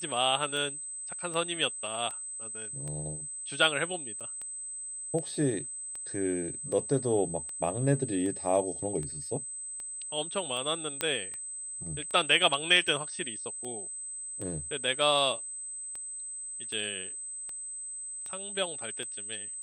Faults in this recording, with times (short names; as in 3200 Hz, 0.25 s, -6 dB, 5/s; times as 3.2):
tick 78 rpm
tone 8200 Hz -37 dBFS
4.2–4.21 gap 6.3 ms
11.01 pop -12 dBFS